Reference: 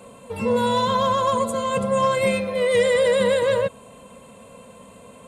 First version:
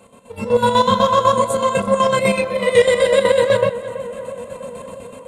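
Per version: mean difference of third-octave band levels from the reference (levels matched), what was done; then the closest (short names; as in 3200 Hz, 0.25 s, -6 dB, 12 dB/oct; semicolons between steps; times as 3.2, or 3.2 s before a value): 3.5 dB: AGC gain up to 10 dB; chorus voices 2, 0.52 Hz, delay 29 ms, depth 4.4 ms; chopper 8 Hz, depth 60%, duty 55%; on a send: tape echo 0.326 s, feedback 80%, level -13 dB, low-pass 1900 Hz; on the sum: gain +2 dB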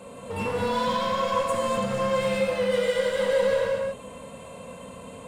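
5.5 dB: high shelf 8800 Hz -5.5 dB; compressor 5:1, threshold -25 dBFS, peak gain reduction 9.5 dB; overloaded stage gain 26 dB; non-linear reverb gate 0.28 s flat, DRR -2 dB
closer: first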